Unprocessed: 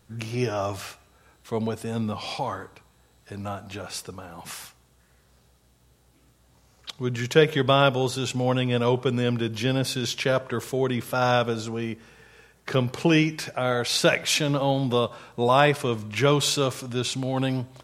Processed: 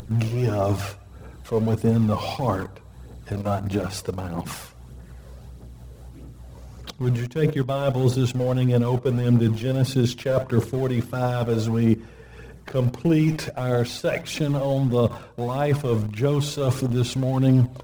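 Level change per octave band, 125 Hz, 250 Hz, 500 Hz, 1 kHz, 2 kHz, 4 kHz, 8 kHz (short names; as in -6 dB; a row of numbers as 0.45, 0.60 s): +7.0, +4.0, 0.0, -4.0, -7.0, -7.5, -5.5 dB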